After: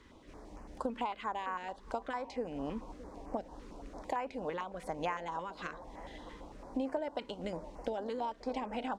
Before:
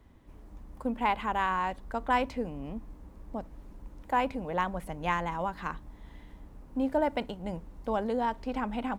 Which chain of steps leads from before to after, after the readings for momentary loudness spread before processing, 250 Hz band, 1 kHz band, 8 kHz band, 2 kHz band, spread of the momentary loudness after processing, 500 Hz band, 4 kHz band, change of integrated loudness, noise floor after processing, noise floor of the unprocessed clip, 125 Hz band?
22 LU, -7.0 dB, -8.0 dB, n/a, -9.0 dB, 13 LU, -4.5 dB, -5.0 dB, -7.5 dB, -55 dBFS, -53 dBFS, -9.5 dB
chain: tone controls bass -15 dB, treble +9 dB; compressor 10:1, threshold -41 dBFS, peak gain reduction 19.5 dB; air absorption 110 m; on a send: band-limited delay 0.618 s, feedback 73%, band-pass 500 Hz, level -15 dB; on the sum: stepped notch 8.9 Hz 700–3600 Hz; gain +9.5 dB

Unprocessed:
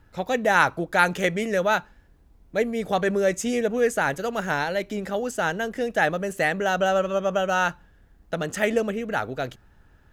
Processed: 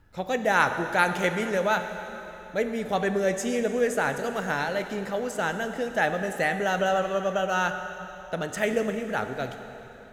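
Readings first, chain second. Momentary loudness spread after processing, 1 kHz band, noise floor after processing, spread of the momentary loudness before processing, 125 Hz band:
11 LU, -2.0 dB, -43 dBFS, 7 LU, -2.0 dB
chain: plate-style reverb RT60 3.5 s, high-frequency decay 0.9×, DRR 7 dB; gain -3 dB

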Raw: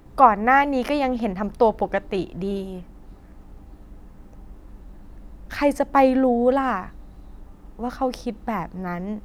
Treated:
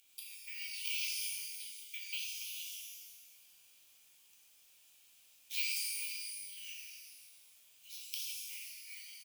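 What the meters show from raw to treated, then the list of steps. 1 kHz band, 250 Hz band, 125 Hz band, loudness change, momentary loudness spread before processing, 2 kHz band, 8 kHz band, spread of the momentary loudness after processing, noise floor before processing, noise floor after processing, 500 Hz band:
under -40 dB, under -40 dB, under -40 dB, -17.5 dB, 14 LU, -15.5 dB, +7.5 dB, 19 LU, -46 dBFS, -65 dBFS, under -40 dB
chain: compressor 5:1, threshold -25 dBFS, peak gain reduction 16 dB; rippled Chebyshev high-pass 2300 Hz, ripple 6 dB; frequency-shifting echo 0.131 s, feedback 63%, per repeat -40 Hz, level -14.5 dB; careless resampling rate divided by 2×, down none, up zero stuff; shimmer reverb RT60 1.2 s, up +12 st, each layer -2 dB, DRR -3 dB; gain +1 dB

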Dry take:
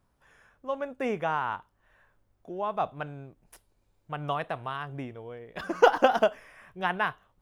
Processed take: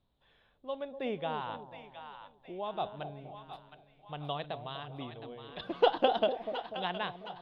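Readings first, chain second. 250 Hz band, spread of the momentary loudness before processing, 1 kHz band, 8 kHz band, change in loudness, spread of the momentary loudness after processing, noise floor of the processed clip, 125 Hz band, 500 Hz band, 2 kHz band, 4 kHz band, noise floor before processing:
-5.0 dB, 19 LU, -6.5 dB, n/a, -6.0 dB, 20 LU, -69 dBFS, -5.0 dB, -5.0 dB, -10.5 dB, +1.0 dB, -71 dBFS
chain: EQ curve 760 Hz 0 dB, 1400 Hz -8 dB, 2500 Hz -1 dB, 3800 Hz +13 dB, 5800 Hz -20 dB; split-band echo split 790 Hz, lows 0.246 s, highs 0.715 s, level -9 dB; gain -5.5 dB

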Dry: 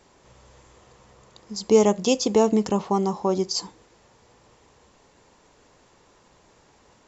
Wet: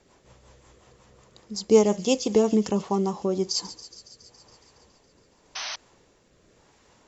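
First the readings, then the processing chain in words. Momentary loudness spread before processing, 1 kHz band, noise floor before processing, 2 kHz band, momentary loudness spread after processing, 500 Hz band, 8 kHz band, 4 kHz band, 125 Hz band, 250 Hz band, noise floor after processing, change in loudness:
10 LU, -5.0 dB, -59 dBFS, 0.0 dB, 19 LU, -1.5 dB, n/a, -0.5 dB, -1.5 dB, -1.0 dB, -62 dBFS, -2.0 dB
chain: rotary speaker horn 5.5 Hz, later 0.9 Hz, at 2.67; thin delay 0.139 s, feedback 74%, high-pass 2900 Hz, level -14 dB; painted sound noise, 5.55–5.76, 590–6300 Hz -33 dBFS

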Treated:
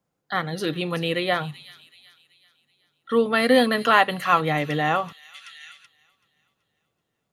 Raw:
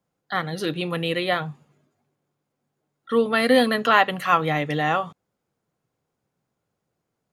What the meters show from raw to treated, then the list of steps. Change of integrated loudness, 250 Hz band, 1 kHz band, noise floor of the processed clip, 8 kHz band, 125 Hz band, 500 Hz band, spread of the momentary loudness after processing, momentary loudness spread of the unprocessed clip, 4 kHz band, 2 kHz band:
0.0 dB, 0.0 dB, 0.0 dB, -78 dBFS, +1.0 dB, 0.0 dB, 0.0 dB, 10 LU, 10 LU, +0.5 dB, 0.0 dB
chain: thin delay 0.38 s, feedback 44%, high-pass 4100 Hz, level -8.5 dB; spectral gain 5.35–5.86, 1300–11000 Hz +12 dB

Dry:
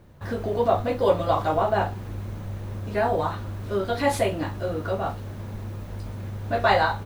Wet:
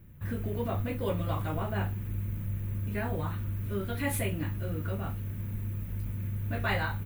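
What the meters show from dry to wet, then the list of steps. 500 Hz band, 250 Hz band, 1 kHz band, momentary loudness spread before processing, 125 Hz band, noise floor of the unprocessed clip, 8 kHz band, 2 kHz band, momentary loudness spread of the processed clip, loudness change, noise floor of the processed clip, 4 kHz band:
-13.5 dB, -4.0 dB, -14.5 dB, 14 LU, 0.0 dB, -36 dBFS, -2.0 dB, -7.0 dB, 6 LU, -7.5 dB, -37 dBFS, -9.0 dB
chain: EQ curve 170 Hz 0 dB, 720 Hz -17 dB, 2400 Hz -3 dB, 4900 Hz -16 dB, 14000 Hz +9 dB

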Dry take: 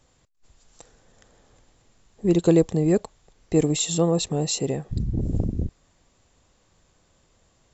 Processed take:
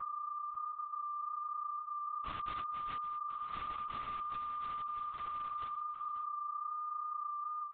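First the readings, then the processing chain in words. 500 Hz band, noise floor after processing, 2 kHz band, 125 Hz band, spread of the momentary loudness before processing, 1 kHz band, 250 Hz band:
-38.5 dB, -45 dBFS, -9.5 dB, -35.0 dB, 9 LU, +6.5 dB, -39.0 dB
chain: spectral gate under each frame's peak -30 dB weak; reverb removal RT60 0.51 s; HPF 320 Hz 24 dB/oct; gate with hold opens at -50 dBFS; high shelf 2100 Hz -8 dB; compressor 1.5:1, threshold -52 dBFS, peak gain reduction 5 dB; noise vocoder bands 1; whine 1200 Hz -40 dBFS; air absorption 180 m; echo 0.551 s -12.5 dB; LPC vocoder at 8 kHz whisper; ending taper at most 120 dB/s; gain +3 dB

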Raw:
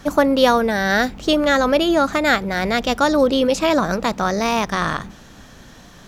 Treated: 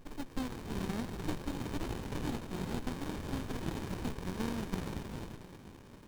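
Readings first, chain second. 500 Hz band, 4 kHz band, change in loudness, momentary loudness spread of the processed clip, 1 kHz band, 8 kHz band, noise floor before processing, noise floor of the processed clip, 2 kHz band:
-26.0 dB, -24.0 dB, -21.5 dB, 7 LU, -25.5 dB, -18.0 dB, -44 dBFS, -53 dBFS, -26.5 dB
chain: steep high-pass 2900 Hz 72 dB/oct; compressor 2.5:1, threshold -32 dBFS, peak gain reduction 9 dB; flange 0.61 Hz, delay 5.2 ms, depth 8.9 ms, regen +45%; on a send: swung echo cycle 0.947 s, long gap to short 3:1, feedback 34%, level -16 dB; on the sum: non-linear reverb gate 0.45 s rising, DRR -1.5 dB; running maximum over 65 samples; gain +3 dB

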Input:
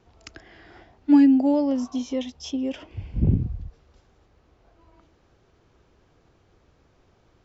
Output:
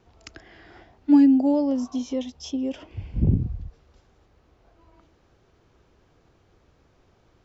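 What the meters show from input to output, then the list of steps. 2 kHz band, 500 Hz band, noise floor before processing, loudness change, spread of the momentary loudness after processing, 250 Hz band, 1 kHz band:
n/a, -0.5 dB, -62 dBFS, 0.0 dB, 19 LU, 0.0 dB, -1.5 dB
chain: dynamic EQ 2100 Hz, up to -6 dB, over -44 dBFS, Q 0.87

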